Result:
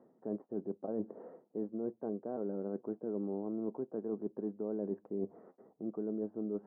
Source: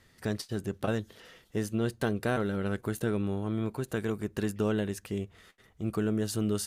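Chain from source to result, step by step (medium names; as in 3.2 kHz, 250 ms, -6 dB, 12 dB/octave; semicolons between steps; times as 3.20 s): high-pass 220 Hz 24 dB/octave; reverse; compression 16:1, threshold -42 dBFS, peak gain reduction 18.5 dB; reverse; inverse Chebyshev low-pass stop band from 3.5 kHz, stop band 70 dB; trim +9 dB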